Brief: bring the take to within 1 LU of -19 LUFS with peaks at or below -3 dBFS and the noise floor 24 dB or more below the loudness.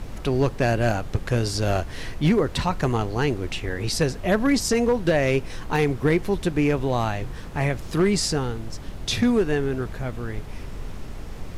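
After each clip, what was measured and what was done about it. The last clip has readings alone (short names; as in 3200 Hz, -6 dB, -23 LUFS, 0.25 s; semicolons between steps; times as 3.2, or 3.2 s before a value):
clipped 0.6%; flat tops at -13.0 dBFS; noise floor -36 dBFS; noise floor target -48 dBFS; loudness -24.0 LUFS; peak -13.0 dBFS; loudness target -19.0 LUFS
-> clip repair -13 dBFS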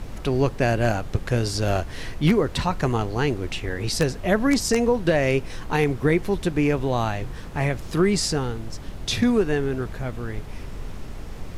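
clipped 0.0%; noise floor -36 dBFS; noise floor target -48 dBFS
-> noise print and reduce 12 dB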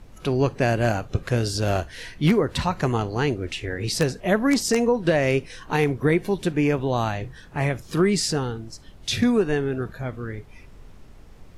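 noise floor -46 dBFS; noise floor target -48 dBFS
-> noise print and reduce 6 dB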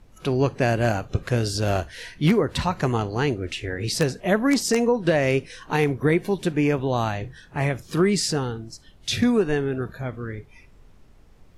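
noise floor -51 dBFS; loudness -23.5 LUFS; peak -4.5 dBFS; loudness target -19.0 LUFS
-> gain +4.5 dB; limiter -3 dBFS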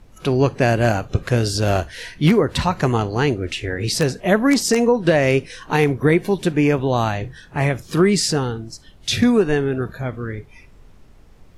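loudness -19.0 LUFS; peak -3.0 dBFS; noise floor -47 dBFS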